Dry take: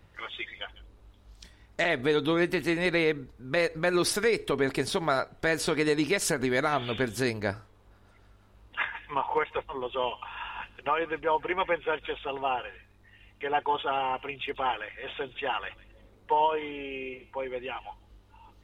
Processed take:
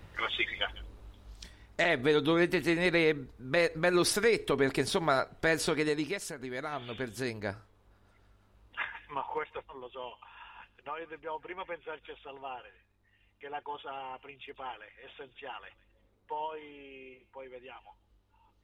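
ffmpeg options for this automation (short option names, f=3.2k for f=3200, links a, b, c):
-af "volume=14.5dB,afade=t=out:st=0.65:d=1.16:silence=0.446684,afade=t=out:st=5.56:d=0.76:silence=0.223872,afade=t=in:st=6.32:d=1.23:silence=0.375837,afade=t=out:st=8.92:d=1.01:silence=0.446684"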